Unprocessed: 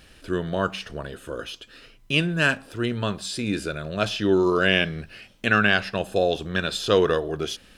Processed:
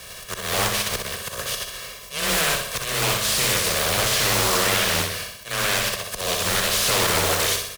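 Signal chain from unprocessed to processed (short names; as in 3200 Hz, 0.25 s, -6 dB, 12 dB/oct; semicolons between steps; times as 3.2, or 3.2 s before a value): spectral contrast lowered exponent 0.24; notch 7400 Hz, Q 22; comb 1.8 ms, depth 89%; in parallel at -1.5 dB: compressor, threshold -25 dBFS, peak gain reduction 13.5 dB; on the sum: limiter -10 dBFS, peak gain reduction 10.5 dB; auto swell 0.286 s; hard clip -22.5 dBFS, distortion -8 dB; on a send: flutter echo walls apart 10.8 m, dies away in 0.71 s; on the sum: frequency shift +15 Hz; Doppler distortion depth 0.62 ms; gain +4.5 dB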